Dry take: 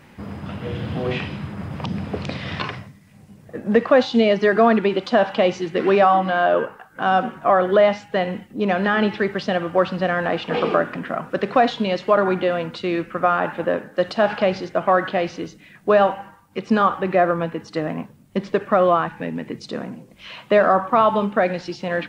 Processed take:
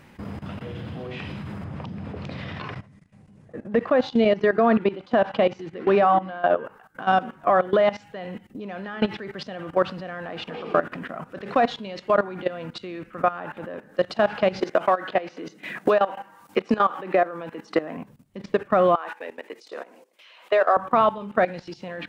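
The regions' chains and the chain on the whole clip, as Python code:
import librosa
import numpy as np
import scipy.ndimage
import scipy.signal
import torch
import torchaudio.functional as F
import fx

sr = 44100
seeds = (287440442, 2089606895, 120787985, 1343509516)

y = fx.chain(x, sr, fx.high_shelf(hz=3300.0, db=-8.5),
    fx.resample_bad(factor=2, down='none', up='filtered'), at=(1.64, 6.65))
y = fx.chain(y, sr, fx.highpass(hz=270.0, slope=12),
    fx.band_squash(depth_pct=100), at=(14.61, 17.97))
y = fx.chain(y, sr, fx.highpass(hz=410.0, slope=24),
    fx.sustainer(db_per_s=130.0), at=(18.95, 20.77))
y = fx.low_shelf(y, sr, hz=64.0, db=2.5)
y = fx.level_steps(y, sr, step_db=17)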